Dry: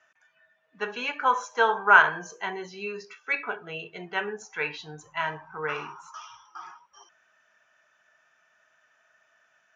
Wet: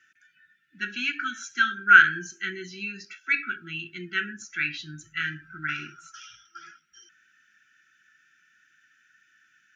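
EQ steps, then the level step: brick-wall FIR band-stop 380–1300 Hz; +3.5 dB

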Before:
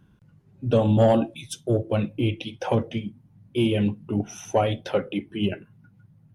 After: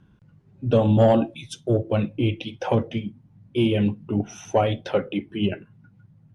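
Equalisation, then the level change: distance through air 56 m; +1.5 dB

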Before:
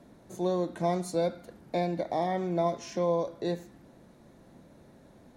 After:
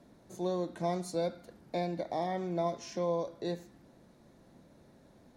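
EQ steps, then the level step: peaking EQ 4.9 kHz +3.5 dB 0.76 oct; -4.5 dB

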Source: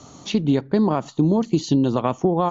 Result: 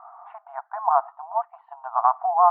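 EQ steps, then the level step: brick-wall FIR high-pass 660 Hz; steep low-pass 1.3 kHz 36 dB/octave; distance through air 140 m; +8.5 dB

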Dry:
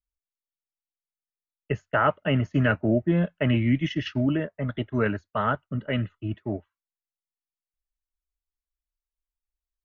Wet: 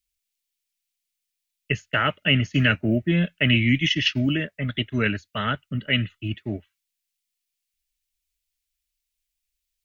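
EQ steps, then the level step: FFT filter 230 Hz 0 dB, 1 kHz -10 dB, 2.4 kHz +12 dB; +2.0 dB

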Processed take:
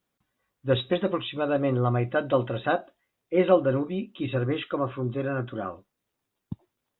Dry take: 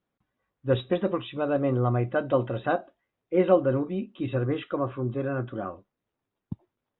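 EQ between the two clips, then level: treble shelf 2.6 kHz +10.5 dB; 0.0 dB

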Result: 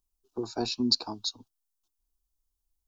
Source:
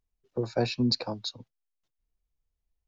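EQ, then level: treble shelf 4.1 kHz +10.5 dB; static phaser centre 540 Hz, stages 6; 0.0 dB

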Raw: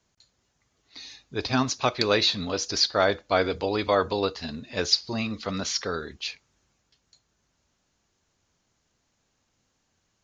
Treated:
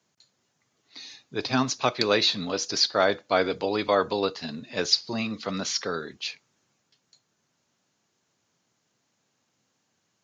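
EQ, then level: high-pass 120 Hz 24 dB/octave; 0.0 dB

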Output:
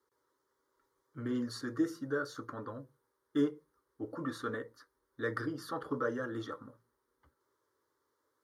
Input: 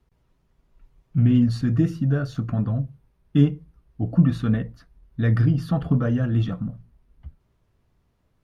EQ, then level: high-pass 410 Hz 12 dB/octave; static phaser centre 700 Hz, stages 6; 0.0 dB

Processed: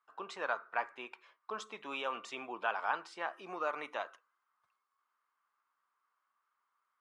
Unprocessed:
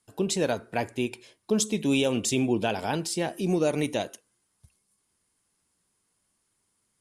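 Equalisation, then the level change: resonant high-pass 1.2 kHz, resonance Q 5.1; tape spacing loss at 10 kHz 24 dB; treble shelf 2.5 kHz -11 dB; 0.0 dB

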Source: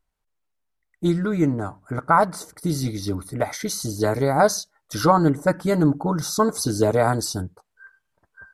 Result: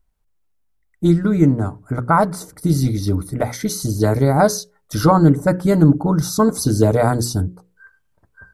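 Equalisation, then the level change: bass shelf 320 Hz +11.5 dB; treble shelf 9.8 kHz +6.5 dB; hum notches 60/120/180/240/300/360/420/480/540 Hz; 0.0 dB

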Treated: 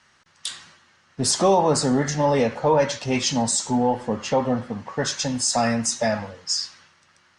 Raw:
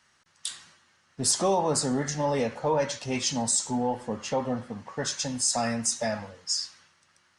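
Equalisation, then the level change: distance through air 54 m; +7.0 dB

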